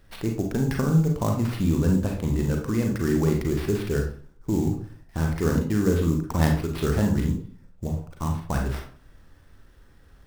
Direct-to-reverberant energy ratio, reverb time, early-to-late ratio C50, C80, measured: 1.5 dB, 0.45 s, 5.5 dB, 10.5 dB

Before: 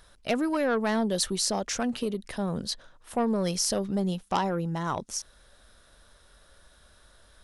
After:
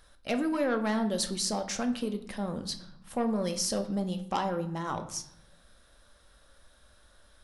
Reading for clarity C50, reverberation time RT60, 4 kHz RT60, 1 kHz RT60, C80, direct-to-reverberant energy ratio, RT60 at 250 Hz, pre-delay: 12.0 dB, 0.75 s, 0.50 s, 0.75 s, 15.5 dB, 6.0 dB, 1.2 s, 4 ms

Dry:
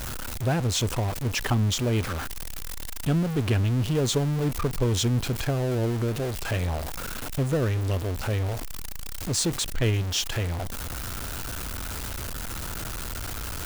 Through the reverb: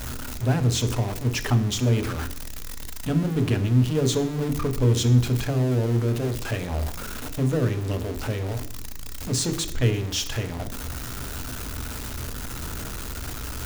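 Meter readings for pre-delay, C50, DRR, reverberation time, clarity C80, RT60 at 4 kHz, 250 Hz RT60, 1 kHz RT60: 3 ms, 13.5 dB, 8.0 dB, 0.70 s, 16.5 dB, 0.70 s, 0.80 s, 0.70 s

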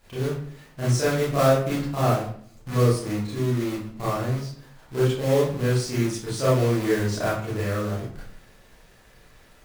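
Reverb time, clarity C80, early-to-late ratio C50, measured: 0.55 s, 7.0 dB, 1.0 dB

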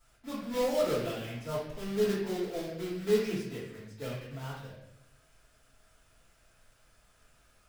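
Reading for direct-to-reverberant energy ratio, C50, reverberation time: -10.5 dB, 1.0 dB, 0.80 s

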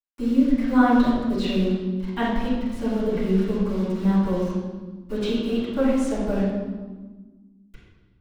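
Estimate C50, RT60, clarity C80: -1.5 dB, 1.4 s, 1.5 dB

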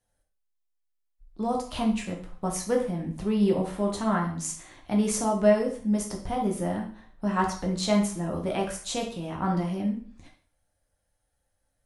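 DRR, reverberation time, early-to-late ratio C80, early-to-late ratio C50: -0.5 dB, 0.45 s, 12.0 dB, 7.5 dB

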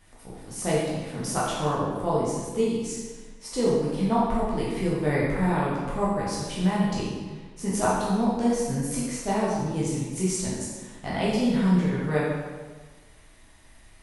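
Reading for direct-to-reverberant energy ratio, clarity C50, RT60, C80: -7.5 dB, -1.0 dB, 1.4 s, 2.0 dB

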